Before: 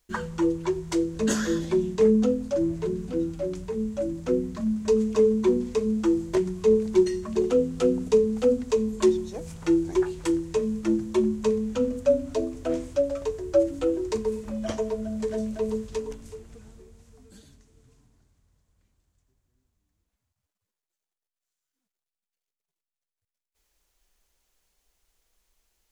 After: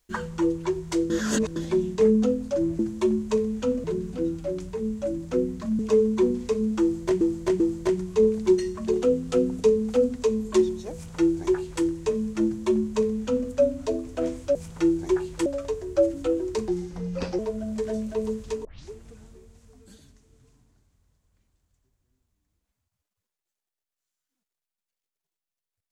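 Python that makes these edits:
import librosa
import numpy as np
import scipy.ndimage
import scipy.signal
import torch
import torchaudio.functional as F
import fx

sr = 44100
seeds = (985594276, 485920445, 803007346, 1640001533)

y = fx.edit(x, sr, fx.reverse_span(start_s=1.1, length_s=0.46),
    fx.cut(start_s=4.74, length_s=0.31),
    fx.repeat(start_s=6.08, length_s=0.39, count=3),
    fx.duplicate(start_s=9.41, length_s=0.91, to_s=13.03),
    fx.duplicate(start_s=10.92, length_s=1.05, to_s=2.79),
    fx.speed_span(start_s=14.25, length_s=0.58, speed=0.82),
    fx.tape_start(start_s=16.09, length_s=0.27), tone=tone)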